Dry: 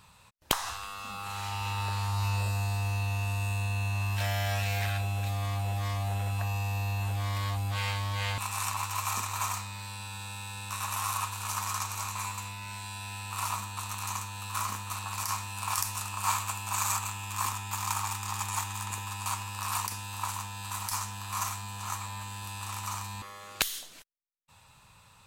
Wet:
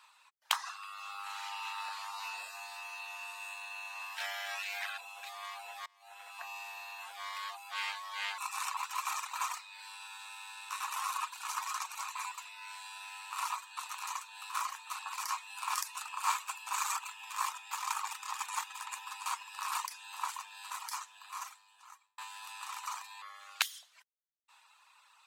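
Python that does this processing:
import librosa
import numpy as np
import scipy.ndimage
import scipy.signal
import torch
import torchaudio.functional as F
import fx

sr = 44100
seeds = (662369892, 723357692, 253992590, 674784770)

y = fx.edit(x, sr, fx.fade_in_from(start_s=5.86, length_s=0.73, floor_db=-20.0),
    fx.fade_out_span(start_s=20.57, length_s=1.61), tone=tone)
y = fx.dereverb_blind(y, sr, rt60_s=0.85)
y = scipy.signal.sosfilt(scipy.signal.butter(4, 880.0, 'highpass', fs=sr, output='sos'), y)
y = fx.high_shelf(y, sr, hz=6900.0, db=-10.0)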